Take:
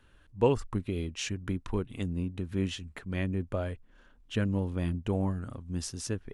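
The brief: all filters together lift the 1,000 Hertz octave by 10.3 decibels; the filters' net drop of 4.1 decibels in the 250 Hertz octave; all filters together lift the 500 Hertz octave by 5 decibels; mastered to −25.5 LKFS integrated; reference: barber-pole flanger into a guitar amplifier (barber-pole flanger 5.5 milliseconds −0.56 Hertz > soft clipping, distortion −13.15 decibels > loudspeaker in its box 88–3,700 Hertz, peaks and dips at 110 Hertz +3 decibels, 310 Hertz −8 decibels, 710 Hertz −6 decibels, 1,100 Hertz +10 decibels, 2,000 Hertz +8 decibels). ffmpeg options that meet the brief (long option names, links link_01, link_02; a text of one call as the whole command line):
ffmpeg -i in.wav -filter_complex "[0:a]equalizer=frequency=250:width_type=o:gain=-5.5,equalizer=frequency=500:width_type=o:gain=7.5,equalizer=frequency=1000:width_type=o:gain=6,asplit=2[link_01][link_02];[link_02]adelay=5.5,afreqshift=-0.56[link_03];[link_01][link_03]amix=inputs=2:normalize=1,asoftclip=threshold=-14.5dB,highpass=88,equalizer=frequency=110:width_type=q:width=4:gain=3,equalizer=frequency=310:width_type=q:width=4:gain=-8,equalizer=frequency=710:width_type=q:width=4:gain=-6,equalizer=frequency=1100:width_type=q:width=4:gain=10,equalizer=frequency=2000:width_type=q:width=4:gain=8,lowpass=frequency=3700:width=0.5412,lowpass=frequency=3700:width=1.3066,volume=9.5dB" out.wav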